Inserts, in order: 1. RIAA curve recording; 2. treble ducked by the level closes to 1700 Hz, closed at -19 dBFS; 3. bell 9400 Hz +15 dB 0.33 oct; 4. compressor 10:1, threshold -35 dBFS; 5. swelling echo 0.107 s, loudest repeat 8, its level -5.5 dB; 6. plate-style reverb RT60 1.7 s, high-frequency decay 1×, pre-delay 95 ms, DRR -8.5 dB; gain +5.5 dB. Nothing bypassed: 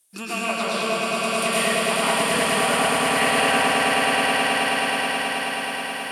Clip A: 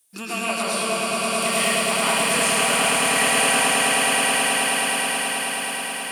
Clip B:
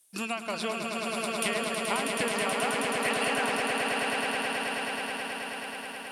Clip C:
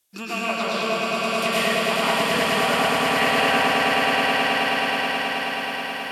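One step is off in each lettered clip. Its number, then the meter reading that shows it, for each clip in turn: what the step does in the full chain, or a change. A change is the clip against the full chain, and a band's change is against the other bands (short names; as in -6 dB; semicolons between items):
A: 2, 8 kHz band +8.5 dB; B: 6, echo-to-direct 16.0 dB to 6.0 dB; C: 3, 8 kHz band -7.0 dB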